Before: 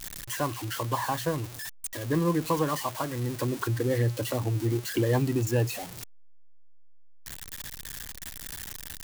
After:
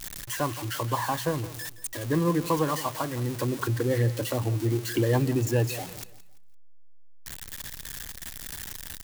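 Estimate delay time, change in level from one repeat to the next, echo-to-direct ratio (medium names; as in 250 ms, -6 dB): 170 ms, -9.5 dB, -15.5 dB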